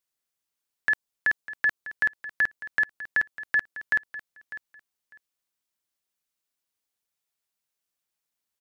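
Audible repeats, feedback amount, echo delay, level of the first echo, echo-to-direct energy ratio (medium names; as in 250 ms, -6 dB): 2, 18%, 600 ms, -15.0 dB, -15.0 dB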